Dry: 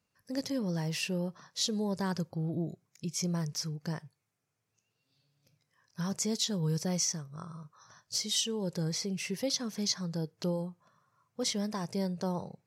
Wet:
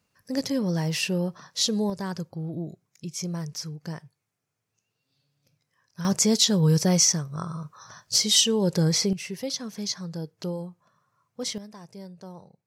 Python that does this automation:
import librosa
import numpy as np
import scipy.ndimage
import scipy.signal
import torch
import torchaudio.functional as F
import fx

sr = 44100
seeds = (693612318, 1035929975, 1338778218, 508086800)

y = fx.gain(x, sr, db=fx.steps((0.0, 7.0), (1.9, 1.0), (6.05, 11.0), (9.13, 1.0), (11.58, -9.0)))